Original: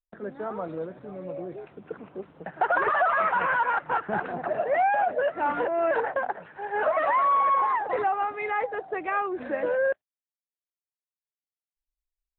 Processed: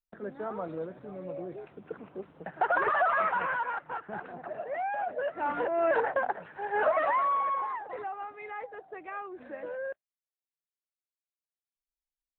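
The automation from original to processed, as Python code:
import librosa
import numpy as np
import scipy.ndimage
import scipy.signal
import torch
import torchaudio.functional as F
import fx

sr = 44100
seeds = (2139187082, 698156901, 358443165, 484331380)

y = fx.gain(x, sr, db=fx.line((3.19, -3.0), (3.93, -10.5), (4.79, -10.5), (5.94, -1.0), (6.86, -1.0), (7.92, -12.0)))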